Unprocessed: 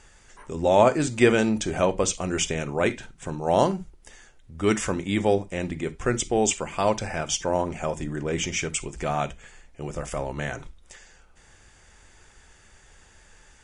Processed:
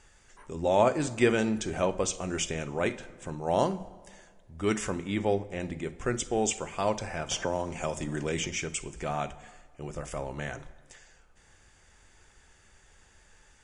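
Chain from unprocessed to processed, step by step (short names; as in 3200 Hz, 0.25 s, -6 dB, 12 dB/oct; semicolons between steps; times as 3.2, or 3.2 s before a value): 4.9–5.6 high shelf 7100 Hz -9.5 dB; plate-style reverb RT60 1.7 s, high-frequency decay 0.65×, DRR 16 dB; 7.31–8.48 three-band squash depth 70%; gain -5.5 dB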